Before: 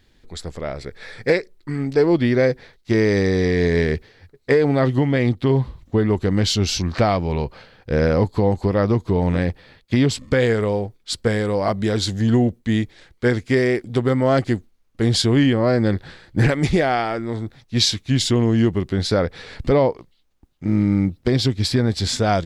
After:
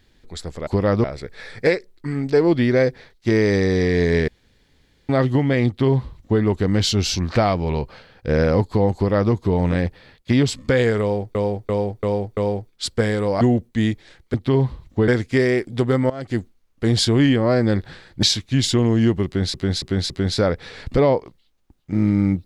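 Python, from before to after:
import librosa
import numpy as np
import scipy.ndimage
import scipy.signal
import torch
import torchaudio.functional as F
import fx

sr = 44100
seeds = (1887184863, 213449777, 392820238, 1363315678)

y = fx.edit(x, sr, fx.room_tone_fill(start_s=3.91, length_s=0.81),
    fx.duplicate(start_s=5.3, length_s=0.74, to_s=13.25),
    fx.duplicate(start_s=8.58, length_s=0.37, to_s=0.67),
    fx.repeat(start_s=10.64, length_s=0.34, count=5),
    fx.cut(start_s=11.68, length_s=0.64),
    fx.fade_in_from(start_s=14.27, length_s=0.29, curve='qua', floor_db=-18.0),
    fx.cut(start_s=16.4, length_s=1.4),
    fx.repeat(start_s=18.83, length_s=0.28, count=4), tone=tone)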